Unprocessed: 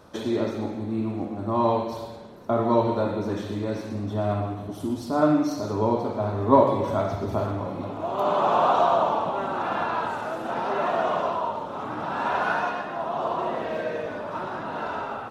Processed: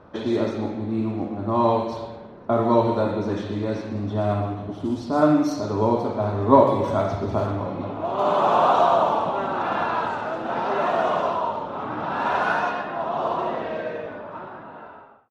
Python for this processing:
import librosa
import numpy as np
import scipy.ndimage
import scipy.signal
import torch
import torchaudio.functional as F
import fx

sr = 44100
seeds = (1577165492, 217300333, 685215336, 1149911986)

y = fx.fade_out_tail(x, sr, length_s=2.01)
y = fx.env_lowpass(y, sr, base_hz=2000.0, full_db=-18.5)
y = y * librosa.db_to_amplitude(2.5)